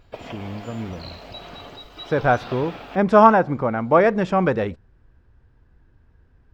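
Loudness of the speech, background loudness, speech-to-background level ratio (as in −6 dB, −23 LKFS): −19.0 LKFS, −38.5 LKFS, 19.5 dB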